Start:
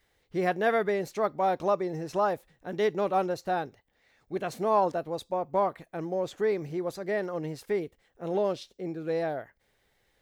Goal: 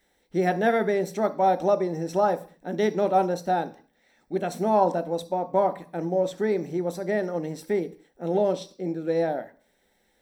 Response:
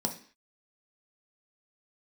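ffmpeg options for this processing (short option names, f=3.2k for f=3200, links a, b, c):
-filter_complex "[0:a]asplit=2[a][b];[1:a]atrim=start_sample=2205,highshelf=f=4.4k:g=8[c];[b][c]afir=irnorm=-1:irlink=0,volume=-6.5dB[d];[a][d]amix=inputs=2:normalize=0,volume=-2dB"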